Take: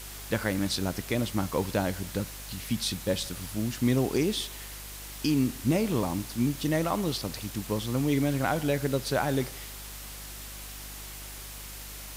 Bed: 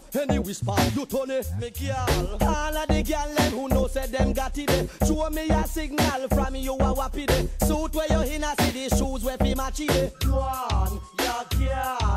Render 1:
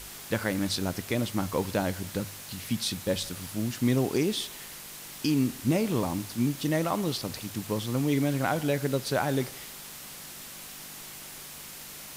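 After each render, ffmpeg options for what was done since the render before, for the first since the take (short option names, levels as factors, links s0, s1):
-af "bandreject=f=50:t=h:w=4,bandreject=f=100:t=h:w=4"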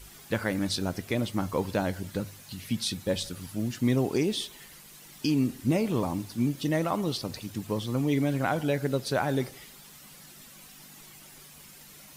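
-af "afftdn=nr=10:nf=-44"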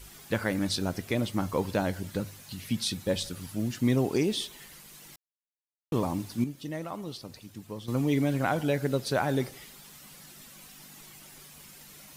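-filter_complex "[0:a]asplit=5[s0][s1][s2][s3][s4];[s0]atrim=end=5.16,asetpts=PTS-STARTPTS,afade=t=out:st=5.156:d=0.004:c=hsin[s5];[s1]atrim=start=5.16:end=5.92,asetpts=PTS-STARTPTS,volume=0[s6];[s2]atrim=start=5.92:end=6.442,asetpts=PTS-STARTPTS,afade=t=in:d=0.004:c=hsin[s7];[s3]atrim=start=6.438:end=7.882,asetpts=PTS-STARTPTS,volume=0.355[s8];[s4]atrim=start=7.878[s9];[s5][s6][s7]concat=n=3:v=0:a=1[s10];[s10][s8]acrossfade=d=0.004:c1=hsin:c2=hsin[s11];[s11][s9]acrossfade=d=0.004:c1=hsin:c2=hsin"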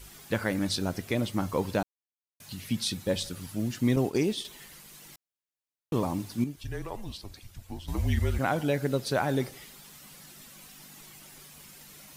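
-filter_complex "[0:a]asettb=1/sr,asplit=3[s0][s1][s2];[s0]atrim=end=3.964[s3];[s1]atrim=start=3.96:end=4.45,asetpts=PTS-STARTPTS,afade=t=in:d=0.004:c=qsin,afade=t=out:st=0.486:d=0.004:c=qsin,agate=range=0.0224:threshold=0.0355:ratio=3:release=100:detection=peak[s4];[s2]atrim=start=4.446[s5];[s3][s4]acrossfade=d=0.004:c1=hsin:c2=qsin[s6];[s6][s5]acrossfade=d=0.004:c1=qsin:c2=hsin,asettb=1/sr,asplit=3[s7][s8][s9];[s7]atrim=end=6.564[s10];[s8]atrim=start=6.56:end=8.39,asetpts=PTS-STARTPTS,afade=t=in:d=0.004:c=qsin,afade=t=out:st=1.826:d=0.004:c=qsin,afreqshift=-190[s11];[s9]atrim=start=8.386[s12];[s10][s11]acrossfade=d=0.004:c1=hsin:c2=qsin[s13];[s13][s12]acrossfade=d=0.004:c1=qsin:c2=hsin,asplit=3[s14][s15][s16];[s14]atrim=end=1.83,asetpts=PTS-STARTPTS,afade=t=out:st=1.826:d=0.004:c=hsin[s17];[s15]atrim=start=1.83:end=2.4,asetpts=PTS-STARTPTS,volume=0[s18];[s16]atrim=start=2.4,asetpts=PTS-STARTPTS,afade=t=in:d=0.004:c=hsin[s19];[s17][s18][s19]concat=n=3:v=0:a=1"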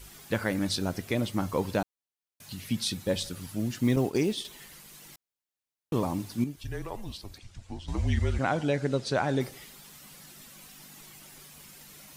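-filter_complex "[0:a]asettb=1/sr,asplit=3[s0][s1][s2];[s0]atrim=end=3.714[s3];[s1]atrim=start=3.71:end=4.5,asetpts=PTS-STARTPTS,afade=t=in:d=0.004:c=qsin,afade=t=out:st=0.786:d=0.004:c=qsin,acrusher=bits=9:mode=log:mix=0:aa=0.000001[s4];[s2]atrim=start=4.496[s5];[s3][s4]acrossfade=d=0.004:c1=hsin:c2=qsin[s6];[s6][s5]acrossfade=d=0.004:c1=qsin:c2=hsin,asettb=1/sr,asplit=3[s7][s8][s9];[s7]atrim=end=7.384[s10];[s8]atrim=start=7.38:end=9.41,asetpts=PTS-STARTPTS,afade=t=in:d=0.004:c=qsin,afade=t=out:st=2.026:d=0.004:c=qsin,lowpass=f=8200:w=0.5412,lowpass=f=8200:w=1.3066[s11];[s9]atrim=start=9.406[s12];[s10][s11]acrossfade=d=0.004:c1=hsin:c2=qsin[s13];[s13][s12]acrossfade=d=0.004:c1=qsin:c2=hsin"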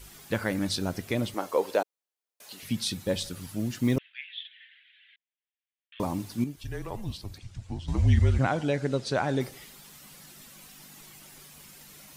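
-filter_complex "[0:a]asettb=1/sr,asplit=3[s0][s1][s2];[s0]atrim=end=1.344[s3];[s1]atrim=start=1.34:end=2.63,asetpts=PTS-STARTPTS,afade=t=in:d=0.004:c=qsin,afade=t=out:st=1.286:d=0.004:c=qsin,highpass=f=470:t=q:w=1.8[s4];[s2]atrim=start=2.626[s5];[s3][s4]acrossfade=d=0.004:c1=hsin:c2=qsin[s6];[s6][s5]acrossfade=d=0.004:c1=qsin:c2=hsin,asettb=1/sr,asplit=3[s7][s8][s9];[s7]atrim=end=3.984[s10];[s8]atrim=start=3.98:end=6,asetpts=PTS-STARTPTS,afade=t=in:d=0.004:c=qsin,afade=t=out:st=2.016:d=0.004:c=qsin,asuperpass=centerf=2400:order=12:qfactor=1.2[s11];[s9]atrim=start=5.996[s12];[s10][s11]acrossfade=d=0.004:c1=hsin:c2=qsin[s13];[s13][s12]acrossfade=d=0.004:c1=qsin:c2=hsin,asettb=1/sr,asplit=3[s14][s15][s16];[s14]atrim=end=6.874[s17];[s15]atrim=start=6.87:end=8.47,asetpts=PTS-STARTPTS,afade=t=in:d=0.004:c=qsin,afade=t=out:st=1.596:d=0.004:c=qsin,equalizer=f=120:t=o:w=1.5:g=8.5[s18];[s16]atrim=start=8.466[s19];[s17][s18]acrossfade=d=0.004:c1=hsin:c2=qsin[s20];[s20][s19]acrossfade=d=0.004:c1=qsin:c2=hsin"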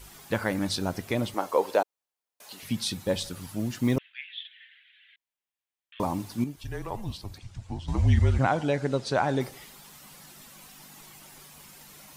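-af "equalizer=f=900:w=1.4:g=5"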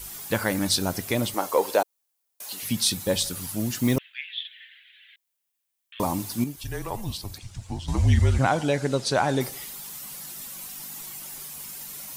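-filter_complex "[0:a]crystalizer=i=2:c=0,asplit=2[s0][s1];[s1]asoftclip=type=tanh:threshold=0.119,volume=0.335[s2];[s0][s2]amix=inputs=2:normalize=0"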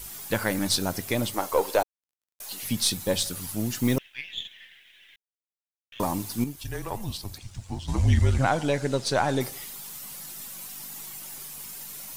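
-af "aeval=exprs='if(lt(val(0),0),0.708*val(0),val(0))':c=same,acrusher=bits=10:mix=0:aa=0.000001"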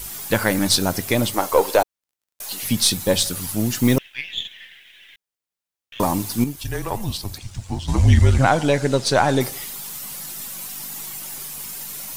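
-af "volume=2.24,alimiter=limit=0.708:level=0:latency=1"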